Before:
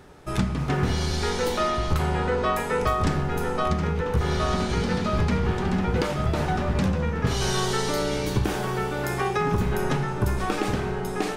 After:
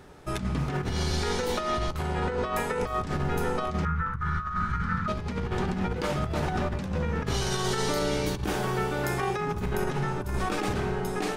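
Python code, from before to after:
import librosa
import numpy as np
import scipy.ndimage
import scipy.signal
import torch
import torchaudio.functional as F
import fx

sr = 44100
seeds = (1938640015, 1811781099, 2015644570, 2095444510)

y = fx.curve_eq(x, sr, hz=(150.0, 440.0, 720.0, 1300.0, 2700.0, 4400.0, 9400.0, 14000.0), db=(0, -22, -20, 10, -13, -17, -17, -21), at=(3.85, 5.08))
y = fx.over_compress(y, sr, threshold_db=-25.0, ratio=-0.5)
y = F.gain(torch.from_numpy(y), -2.5).numpy()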